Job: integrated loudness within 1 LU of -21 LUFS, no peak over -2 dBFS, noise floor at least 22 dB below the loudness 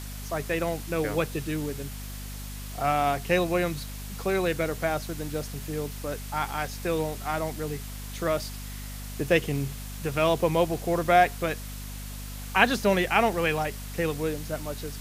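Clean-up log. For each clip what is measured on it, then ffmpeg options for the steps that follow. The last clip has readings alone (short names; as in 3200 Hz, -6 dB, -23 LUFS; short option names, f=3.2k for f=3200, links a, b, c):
hum 50 Hz; harmonics up to 250 Hz; hum level -36 dBFS; noise floor -38 dBFS; noise floor target -50 dBFS; loudness -27.5 LUFS; peak -4.5 dBFS; loudness target -21.0 LUFS
-> -af "bandreject=f=50:t=h:w=4,bandreject=f=100:t=h:w=4,bandreject=f=150:t=h:w=4,bandreject=f=200:t=h:w=4,bandreject=f=250:t=h:w=4"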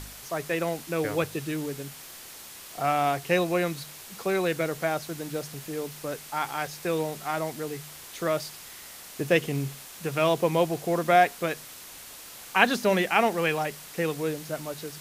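hum none; noise floor -45 dBFS; noise floor target -50 dBFS
-> -af "afftdn=nr=6:nf=-45"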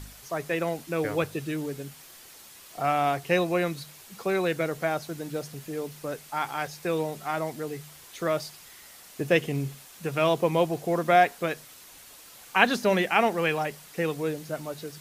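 noise floor -49 dBFS; noise floor target -50 dBFS
-> -af "afftdn=nr=6:nf=-49"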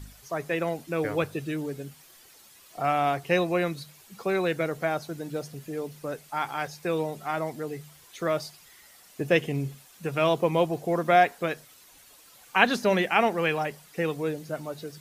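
noise floor -54 dBFS; loudness -27.5 LUFS; peak -4.5 dBFS; loudness target -21.0 LUFS
-> -af "volume=6.5dB,alimiter=limit=-2dB:level=0:latency=1"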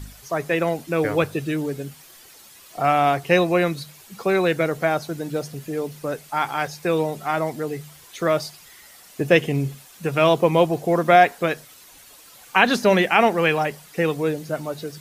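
loudness -21.5 LUFS; peak -2.0 dBFS; noise floor -48 dBFS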